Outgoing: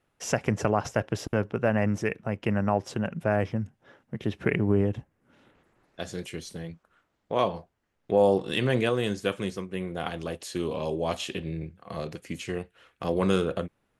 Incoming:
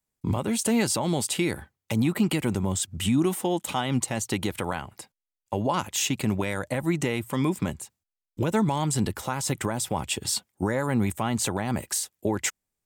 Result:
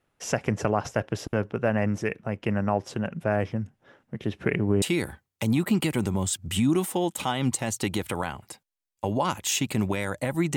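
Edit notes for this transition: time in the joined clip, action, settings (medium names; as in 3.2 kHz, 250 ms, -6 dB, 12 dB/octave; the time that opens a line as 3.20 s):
outgoing
4.82 s: go over to incoming from 1.31 s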